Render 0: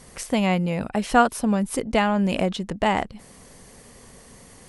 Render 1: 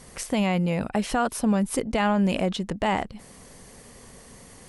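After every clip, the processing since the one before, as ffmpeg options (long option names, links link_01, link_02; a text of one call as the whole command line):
ffmpeg -i in.wav -af "alimiter=limit=-13.5dB:level=0:latency=1:release=18" out.wav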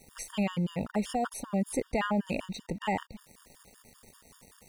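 ffmpeg -i in.wav -af "aeval=exprs='val(0)*gte(abs(val(0)),0.00631)':channel_layout=same,afftfilt=real='re*gt(sin(2*PI*5.2*pts/sr)*(1-2*mod(floor(b*sr/1024/930),2)),0)':imag='im*gt(sin(2*PI*5.2*pts/sr)*(1-2*mod(floor(b*sr/1024/930),2)),0)':win_size=1024:overlap=0.75,volume=-4dB" out.wav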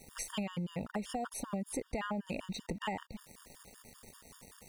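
ffmpeg -i in.wav -af "acompressor=threshold=-35dB:ratio=6,volume=1dB" out.wav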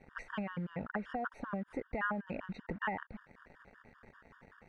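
ffmpeg -i in.wav -filter_complex "[0:a]asplit=2[link_01][link_02];[link_02]acrusher=bits=7:mix=0:aa=0.000001,volume=-9.5dB[link_03];[link_01][link_03]amix=inputs=2:normalize=0,lowpass=frequency=1600:width_type=q:width=3.7,volume=-4.5dB" out.wav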